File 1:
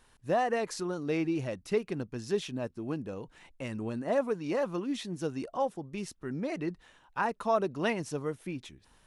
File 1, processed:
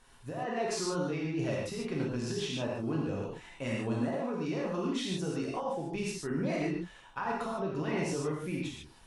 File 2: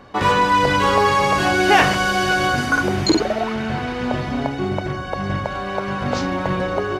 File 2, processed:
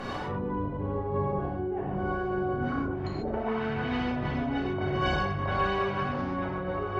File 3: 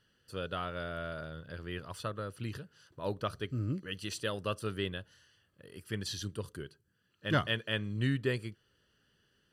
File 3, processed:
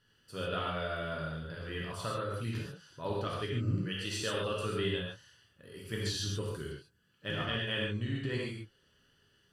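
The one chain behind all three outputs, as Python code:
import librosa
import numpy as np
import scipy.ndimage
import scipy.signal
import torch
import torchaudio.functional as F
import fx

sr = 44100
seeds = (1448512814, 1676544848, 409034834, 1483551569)

y = fx.env_lowpass_down(x, sr, base_hz=410.0, full_db=-13.5)
y = fx.over_compress(y, sr, threshold_db=-33.0, ratio=-1.0)
y = fx.rev_gated(y, sr, seeds[0], gate_ms=170, shape='flat', drr_db=-4.0)
y = y * 10.0 ** (-3.0 / 20.0)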